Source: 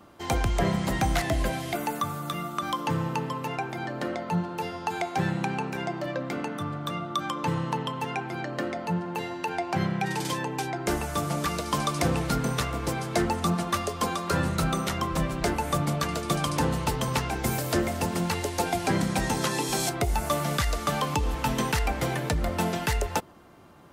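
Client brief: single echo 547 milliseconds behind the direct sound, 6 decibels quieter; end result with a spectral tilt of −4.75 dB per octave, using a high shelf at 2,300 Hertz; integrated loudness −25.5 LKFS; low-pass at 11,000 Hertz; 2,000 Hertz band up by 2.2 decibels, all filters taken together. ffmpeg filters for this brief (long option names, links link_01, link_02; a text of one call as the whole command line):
ffmpeg -i in.wav -af "lowpass=11000,equalizer=frequency=2000:width_type=o:gain=5.5,highshelf=frequency=2300:gain=-5.5,aecho=1:1:547:0.501,volume=2dB" out.wav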